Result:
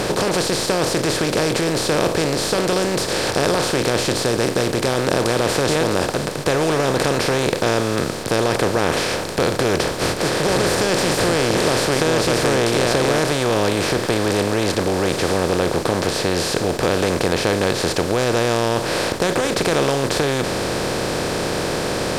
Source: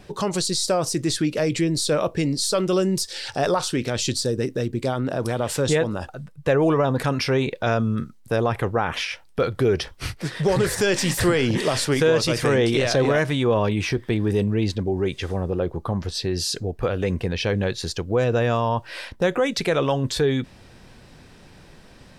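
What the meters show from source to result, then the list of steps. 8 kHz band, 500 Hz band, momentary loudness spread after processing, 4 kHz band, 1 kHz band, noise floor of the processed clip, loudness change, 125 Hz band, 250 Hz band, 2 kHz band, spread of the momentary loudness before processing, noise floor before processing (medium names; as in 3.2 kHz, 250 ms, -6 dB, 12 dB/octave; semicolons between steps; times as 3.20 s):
+5.5 dB, +4.0 dB, 4 LU, +6.0 dB, +6.5 dB, -25 dBFS, +3.5 dB, +0.5 dB, +3.0 dB, +6.5 dB, 7 LU, -48 dBFS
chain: spectral levelling over time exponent 0.2; trim -6.5 dB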